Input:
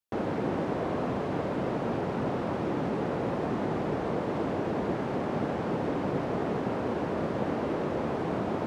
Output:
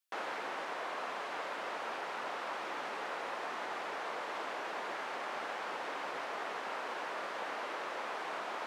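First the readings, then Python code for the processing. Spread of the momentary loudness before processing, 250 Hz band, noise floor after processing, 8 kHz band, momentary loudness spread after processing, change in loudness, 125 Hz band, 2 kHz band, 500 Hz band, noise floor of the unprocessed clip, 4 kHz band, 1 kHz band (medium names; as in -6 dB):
1 LU, -23.0 dB, -41 dBFS, no reading, 0 LU, -8.5 dB, under -30 dB, +1.5 dB, -12.5 dB, -33 dBFS, +2.5 dB, -3.5 dB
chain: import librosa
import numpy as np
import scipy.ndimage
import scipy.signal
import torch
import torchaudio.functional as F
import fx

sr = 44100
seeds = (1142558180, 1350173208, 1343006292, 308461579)

y = scipy.signal.sosfilt(scipy.signal.butter(2, 1200.0, 'highpass', fs=sr, output='sos'), x)
y = fx.rider(y, sr, range_db=10, speed_s=0.5)
y = F.gain(torch.from_numpy(y), 2.5).numpy()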